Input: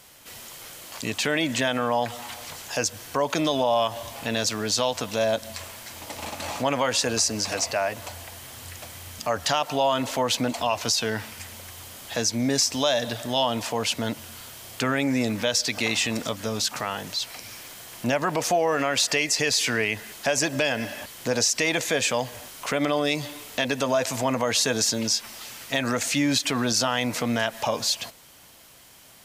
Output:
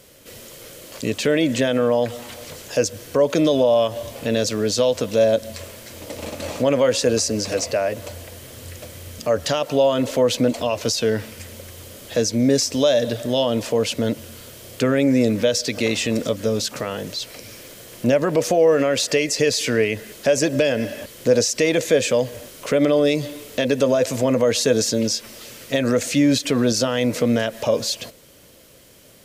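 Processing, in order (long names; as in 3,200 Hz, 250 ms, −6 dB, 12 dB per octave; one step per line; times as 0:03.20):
low shelf with overshoot 650 Hz +6 dB, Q 3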